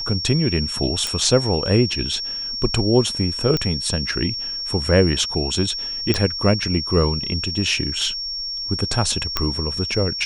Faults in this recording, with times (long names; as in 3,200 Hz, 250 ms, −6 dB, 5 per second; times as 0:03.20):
whistle 5,500 Hz −25 dBFS
0:01.07: click
0:03.57: click −9 dBFS
0:06.14: click −6 dBFS
0:09.37: click −4 dBFS